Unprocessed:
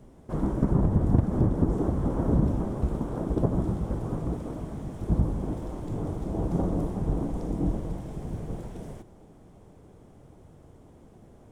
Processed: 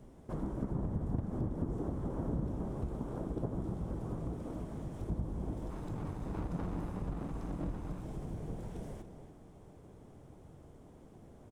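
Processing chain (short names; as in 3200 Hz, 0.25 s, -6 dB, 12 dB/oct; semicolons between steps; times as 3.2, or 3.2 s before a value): 5.7–8.03 minimum comb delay 0.79 ms; compressor 2:1, threshold -36 dBFS, peak gain reduction 11 dB; outdoor echo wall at 49 m, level -10 dB; gain -3.5 dB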